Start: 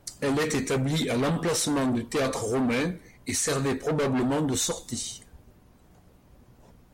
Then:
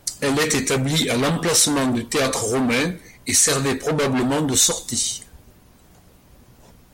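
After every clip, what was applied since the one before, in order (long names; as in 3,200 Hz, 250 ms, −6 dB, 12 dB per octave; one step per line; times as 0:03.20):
high-shelf EQ 2,000 Hz +8 dB
level +4.5 dB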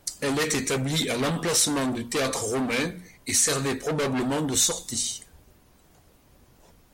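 mains-hum notches 60/120/180/240 Hz
level −5.5 dB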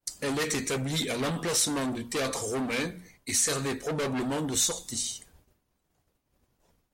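downward expander −47 dBFS
level −4 dB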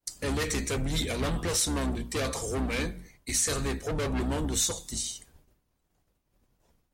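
sub-octave generator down 2 octaves, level +2 dB
level −1.5 dB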